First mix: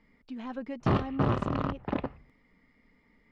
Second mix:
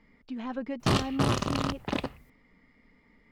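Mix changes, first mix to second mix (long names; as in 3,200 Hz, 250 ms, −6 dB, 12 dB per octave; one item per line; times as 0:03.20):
speech +3.0 dB
background: remove low-pass filter 1,600 Hz 12 dB per octave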